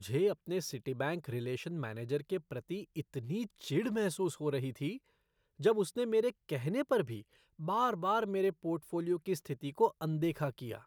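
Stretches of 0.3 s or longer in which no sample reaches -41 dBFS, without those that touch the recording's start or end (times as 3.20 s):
4.97–5.60 s
7.21–7.60 s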